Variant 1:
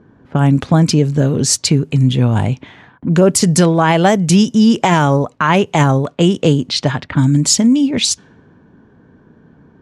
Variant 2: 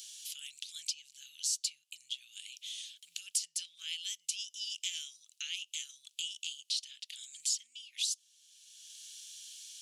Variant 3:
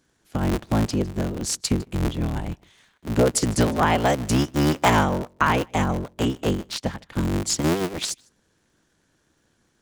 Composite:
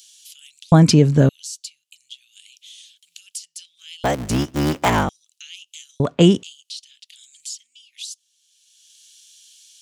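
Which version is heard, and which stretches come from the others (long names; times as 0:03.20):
2
0:00.72–0:01.29: punch in from 1
0:04.04–0:05.09: punch in from 3
0:06.00–0:06.43: punch in from 1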